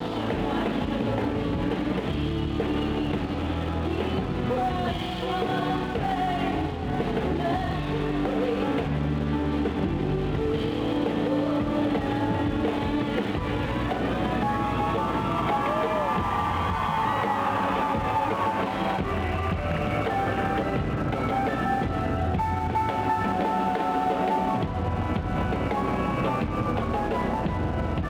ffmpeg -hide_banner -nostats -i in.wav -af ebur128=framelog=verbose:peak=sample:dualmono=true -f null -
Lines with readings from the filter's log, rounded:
Integrated loudness:
  I:         -23.5 LUFS
  Threshold: -33.5 LUFS
Loudness range:
  LRA:         2.0 LU
  Threshold: -43.4 LUFS
  LRA low:   -24.5 LUFS
  LRA high:  -22.5 LUFS
Sample peak:
  Peak:      -14.3 dBFS